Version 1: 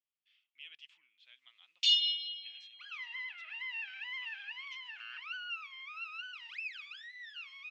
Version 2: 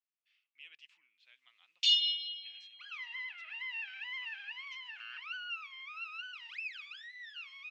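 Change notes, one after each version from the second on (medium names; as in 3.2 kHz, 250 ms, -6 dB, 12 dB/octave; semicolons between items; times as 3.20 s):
speech: add peaking EQ 3.3 kHz -8.5 dB 0.26 oct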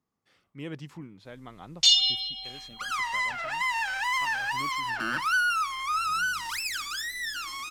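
second sound: remove low-pass 2.7 kHz 12 dB/octave; master: remove ladder band-pass 2.9 kHz, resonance 65%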